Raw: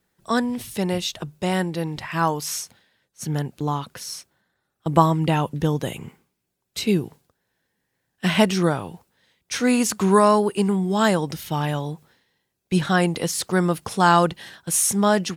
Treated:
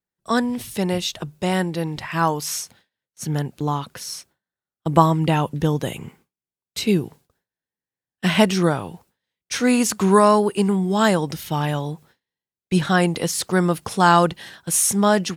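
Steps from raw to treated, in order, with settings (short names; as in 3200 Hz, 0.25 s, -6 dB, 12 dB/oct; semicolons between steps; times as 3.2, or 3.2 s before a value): gate with hold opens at -47 dBFS; gain +1.5 dB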